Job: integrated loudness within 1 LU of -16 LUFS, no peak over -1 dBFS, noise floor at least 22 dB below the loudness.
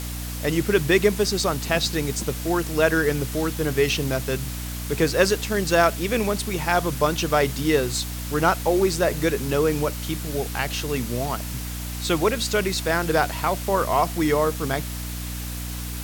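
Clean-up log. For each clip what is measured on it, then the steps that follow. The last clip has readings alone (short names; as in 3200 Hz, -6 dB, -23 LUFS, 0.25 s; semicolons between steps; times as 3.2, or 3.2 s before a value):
hum 60 Hz; harmonics up to 300 Hz; hum level -30 dBFS; noise floor -31 dBFS; noise floor target -45 dBFS; loudness -23.0 LUFS; peak -4.0 dBFS; loudness target -16.0 LUFS
-> notches 60/120/180/240/300 Hz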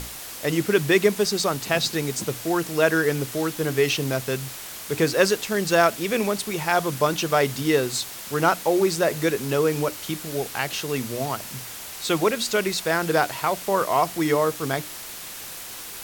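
hum none; noise floor -37 dBFS; noise floor target -45 dBFS
-> noise print and reduce 8 dB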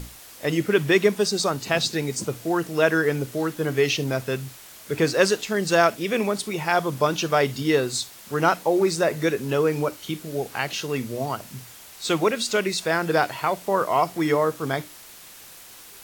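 noise floor -45 dBFS; noise floor target -46 dBFS
-> noise print and reduce 6 dB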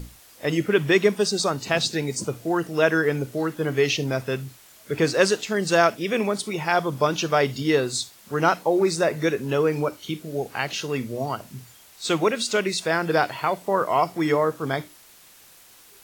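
noise floor -51 dBFS; loudness -23.5 LUFS; peak -4.0 dBFS; loudness target -16.0 LUFS
-> gain +7.5 dB; limiter -1 dBFS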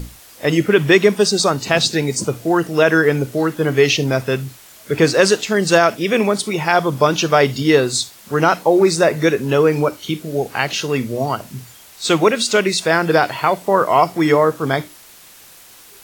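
loudness -16.5 LUFS; peak -1.0 dBFS; noise floor -44 dBFS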